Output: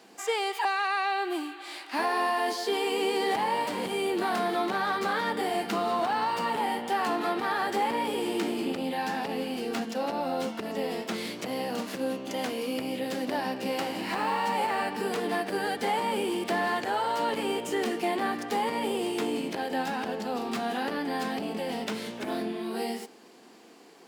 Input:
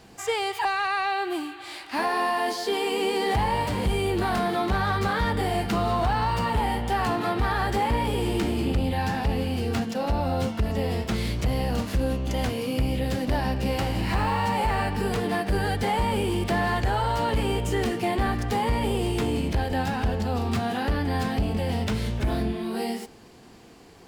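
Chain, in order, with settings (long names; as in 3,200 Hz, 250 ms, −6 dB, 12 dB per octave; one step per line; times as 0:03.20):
high-pass filter 230 Hz 24 dB per octave
level −2 dB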